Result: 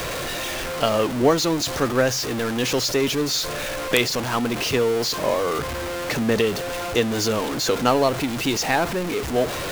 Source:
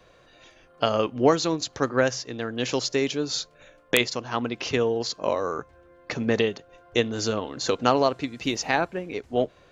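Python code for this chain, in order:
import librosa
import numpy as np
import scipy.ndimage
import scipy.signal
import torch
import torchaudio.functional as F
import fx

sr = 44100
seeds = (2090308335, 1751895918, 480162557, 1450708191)

y = x + 0.5 * 10.0 ** (-22.5 / 20.0) * np.sign(x)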